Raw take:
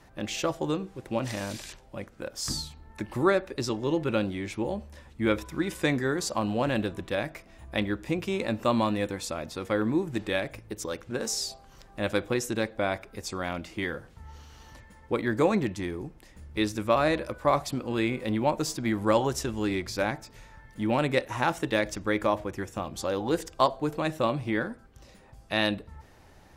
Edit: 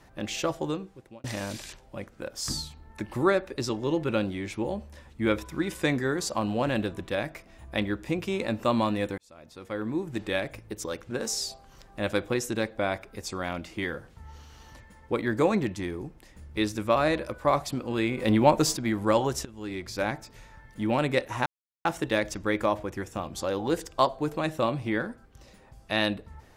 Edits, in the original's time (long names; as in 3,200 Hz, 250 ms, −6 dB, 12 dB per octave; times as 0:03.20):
0:00.58–0:01.24: fade out
0:09.18–0:10.37: fade in
0:18.18–0:18.77: clip gain +6 dB
0:19.45–0:20.10: fade in, from −18.5 dB
0:21.46: splice in silence 0.39 s